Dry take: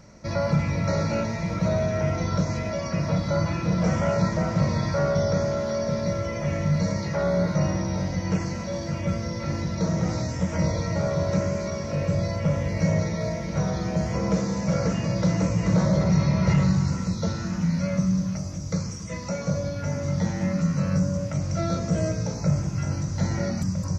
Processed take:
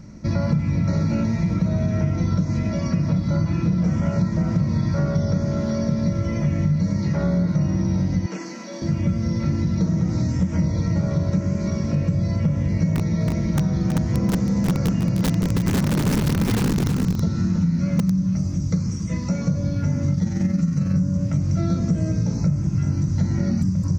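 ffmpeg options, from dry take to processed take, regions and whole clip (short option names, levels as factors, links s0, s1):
-filter_complex "[0:a]asettb=1/sr,asplit=3[s0][s1][s2];[s0]atrim=end=8.264[s3];[s1]atrim=start=8.26:end=8.82,asetpts=PTS-STARTPTS,afade=t=in:d=0.004:c=qsin,afade=t=out:st=0.556:d=0.004:c=qsin,highpass=f=260:w=0.5412,highpass=f=260:w=1.3066,lowshelf=f=500:g=-7.5[s4];[s2]atrim=start=8.816[s5];[s3][s4]acrossfade=d=0.004:c1=hsin:c2=qsin[s6];[s6][s5]acrossfade=d=0.004:c1=qsin:c2=hsin,asettb=1/sr,asplit=3[s7][s8][s9];[s7]atrim=end=12.944[s10];[s8]atrim=start=12.94:end=18.11,asetpts=PTS-STARTPTS,afade=t=in:d=0.004:c=qsin,afade=t=out:st=5.166:d=0.004:c=qsin,aeval=exprs='(mod(5.62*val(0)+1,2)-1)/5.62':c=same,aecho=1:1:323:0.422,atrim=end_sample=227997[s11];[s9]atrim=start=18.106[s12];[s10][s11]acrossfade=d=0.004:c1=hsin:c2=qsin[s13];[s13][s12]acrossfade=d=0.004:c1=qsin:c2=hsin,asettb=1/sr,asplit=3[s14][s15][s16];[s14]atrim=end=20.144[s17];[s15]atrim=start=20.14:end=20.94,asetpts=PTS-STARTPTS,afade=t=in:d=0.004:c=qsin,afade=t=out:st=0.796:d=0.004:c=qsin,highshelf=f=5700:g=7.5,bandreject=f=1000:w=8.9,tremolo=f=22:d=0.462[s18];[s16]atrim=start=20.936[s19];[s17][s18]acrossfade=d=0.004:c1=hsin:c2=qsin[s20];[s20][s19]acrossfade=d=0.004:c1=qsin:c2=hsin,lowshelf=f=380:t=q:w=1.5:g=9,acompressor=threshold=0.141:ratio=6"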